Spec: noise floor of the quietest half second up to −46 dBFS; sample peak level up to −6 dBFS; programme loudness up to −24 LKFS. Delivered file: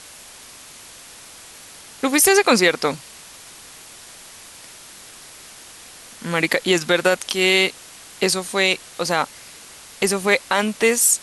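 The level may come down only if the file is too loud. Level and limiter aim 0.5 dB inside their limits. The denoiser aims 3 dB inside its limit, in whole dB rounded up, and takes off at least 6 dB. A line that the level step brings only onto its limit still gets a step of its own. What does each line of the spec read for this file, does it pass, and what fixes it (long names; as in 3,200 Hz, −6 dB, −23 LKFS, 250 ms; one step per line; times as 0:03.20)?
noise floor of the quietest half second −42 dBFS: out of spec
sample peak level −4.5 dBFS: out of spec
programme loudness −18.5 LKFS: out of spec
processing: level −6 dB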